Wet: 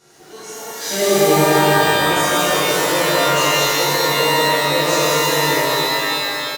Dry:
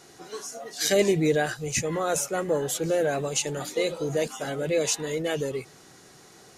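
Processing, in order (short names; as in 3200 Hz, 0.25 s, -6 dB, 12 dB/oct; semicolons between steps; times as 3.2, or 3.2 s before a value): 1.35–1.83 elliptic low-pass 950 Hz; loudspeakers at several distances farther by 61 m -12 dB, 72 m -5 dB, 100 m -10 dB; shimmer reverb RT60 2.9 s, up +12 st, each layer -2 dB, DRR -11.5 dB; gain -6.5 dB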